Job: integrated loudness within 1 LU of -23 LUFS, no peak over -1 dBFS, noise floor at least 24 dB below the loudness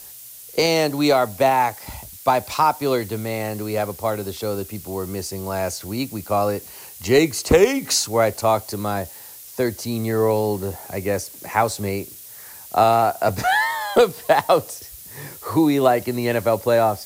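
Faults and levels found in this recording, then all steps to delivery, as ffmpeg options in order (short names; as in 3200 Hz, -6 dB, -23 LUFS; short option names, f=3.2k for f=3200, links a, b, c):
noise floor -40 dBFS; noise floor target -45 dBFS; loudness -21.0 LUFS; peak -4.5 dBFS; loudness target -23.0 LUFS
-> -af "afftdn=nr=6:nf=-40"
-af "volume=-2dB"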